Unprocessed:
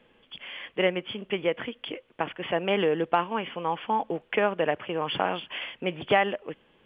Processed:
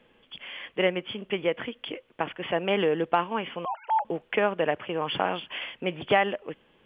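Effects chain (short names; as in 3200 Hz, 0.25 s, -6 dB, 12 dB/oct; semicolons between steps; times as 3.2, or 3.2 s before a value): 3.65–4.05 sine-wave speech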